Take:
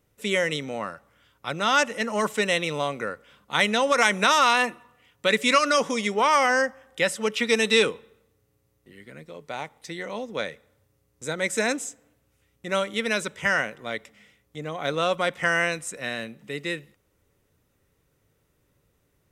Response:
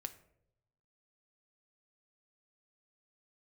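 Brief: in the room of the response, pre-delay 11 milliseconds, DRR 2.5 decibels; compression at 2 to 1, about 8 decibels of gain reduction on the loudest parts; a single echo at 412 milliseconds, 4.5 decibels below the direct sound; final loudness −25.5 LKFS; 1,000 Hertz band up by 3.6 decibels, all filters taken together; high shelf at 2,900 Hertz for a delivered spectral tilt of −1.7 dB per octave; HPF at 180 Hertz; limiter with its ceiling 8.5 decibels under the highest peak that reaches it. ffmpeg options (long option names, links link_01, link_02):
-filter_complex "[0:a]highpass=180,equalizer=frequency=1000:width_type=o:gain=3.5,highshelf=frequency=2900:gain=7,acompressor=threshold=-26dB:ratio=2,alimiter=limit=-16dB:level=0:latency=1,aecho=1:1:412:0.596,asplit=2[link_01][link_02];[1:a]atrim=start_sample=2205,adelay=11[link_03];[link_02][link_03]afir=irnorm=-1:irlink=0,volume=0.5dB[link_04];[link_01][link_04]amix=inputs=2:normalize=0,volume=1dB"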